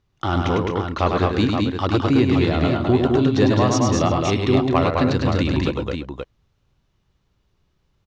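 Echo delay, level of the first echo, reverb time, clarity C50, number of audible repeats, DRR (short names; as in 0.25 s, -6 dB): 0.102 s, -4.5 dB, none, none, 5, none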